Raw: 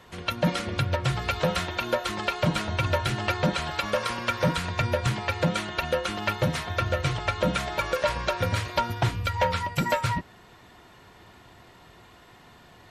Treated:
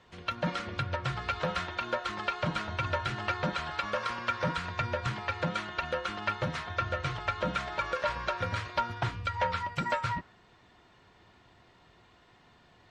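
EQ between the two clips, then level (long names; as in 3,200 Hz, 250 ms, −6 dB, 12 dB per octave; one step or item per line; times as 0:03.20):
high-frequency loss of the air 130 metres
high-shelf EQ 4,300 Hz +9 dB
dynamic equaliser 1,300 Hz, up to +7 dB, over −42 dBFS, Q 1.2
−8.5 dB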